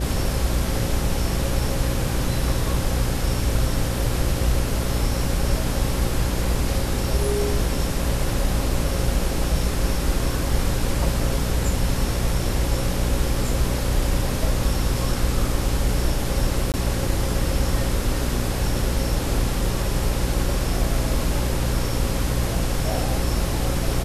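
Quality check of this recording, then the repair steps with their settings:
buzz 60 Hz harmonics 9 -26 dBFS
16.72–16.74 gap 18 ms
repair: de-hum 60 Hz, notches 9; interpolate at 16.72, 18 ms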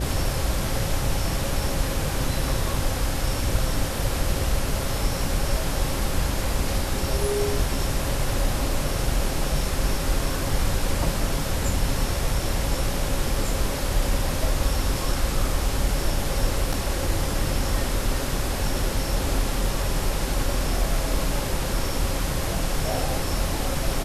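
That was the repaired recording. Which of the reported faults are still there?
none

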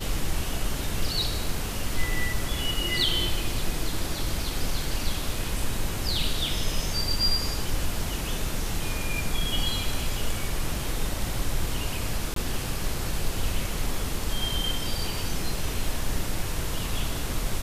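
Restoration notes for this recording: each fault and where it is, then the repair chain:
12.34–12.36 gap 23 ms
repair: interpolate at 12.34, 23 ms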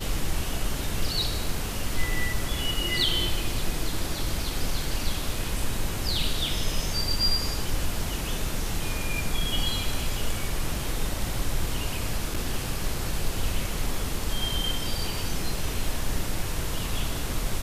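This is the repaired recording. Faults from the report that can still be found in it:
none

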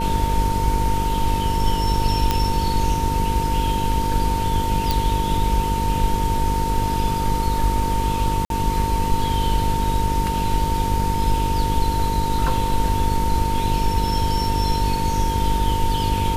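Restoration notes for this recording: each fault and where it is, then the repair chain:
buzz 50 Hz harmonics 10 -25 dBFS
tone 910 Hz -23 dBFS
2.31 pop -5 dBFS
4.91 pop
8.45–8.5 gap 52 ms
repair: de-click; de-hum 50 Hz, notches 10; notch 910 Hz, Q 30; interpolate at 8.45, 52 ms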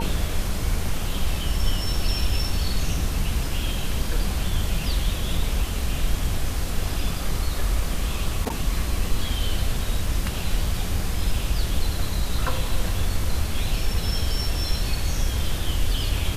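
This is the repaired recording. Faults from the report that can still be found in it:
none

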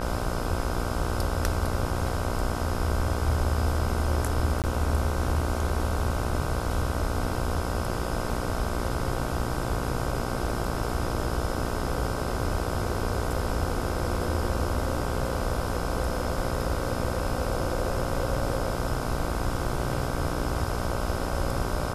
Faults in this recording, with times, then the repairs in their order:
buzz 60 Hz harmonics 26 -32 dBFS
4.62–4.64 gap 18 ms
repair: de-hum 60 Hz, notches 26; interpolate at 4.62, 18 ms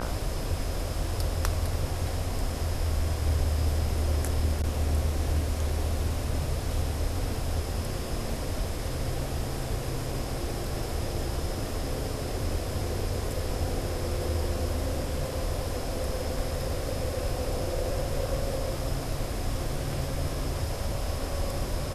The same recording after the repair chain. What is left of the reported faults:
none

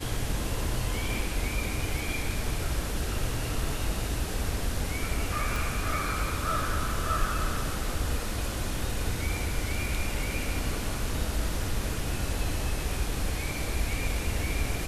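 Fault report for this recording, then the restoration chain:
5.56 pop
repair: de-click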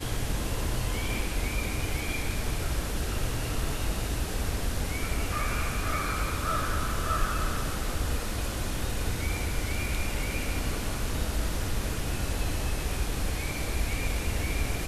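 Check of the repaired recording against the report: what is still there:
5.56 pop

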